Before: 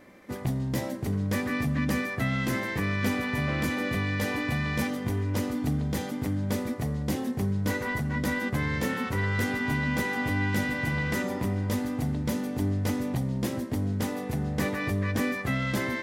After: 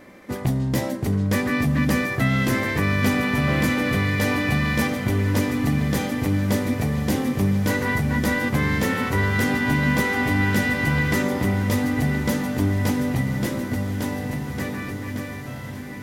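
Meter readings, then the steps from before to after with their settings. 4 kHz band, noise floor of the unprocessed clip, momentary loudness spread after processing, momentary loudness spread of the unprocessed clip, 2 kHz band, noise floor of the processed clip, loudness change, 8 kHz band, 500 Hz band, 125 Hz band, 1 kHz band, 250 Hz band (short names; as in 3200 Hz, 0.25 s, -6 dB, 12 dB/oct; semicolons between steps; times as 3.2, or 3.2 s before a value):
+6.5 dB, -35 dBFS, 8 LU, 3 LU, +6.5 dB, -33 dBFS, +6.5 dB, +6.5 dB, +6.0 dB, +6.0 dB, +6.5 dB, +6.5 dB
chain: ending faded out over 3.53 s; diffused feedback echo 1.27 s, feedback 65%, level -10.5 dB; gain +6.5 dB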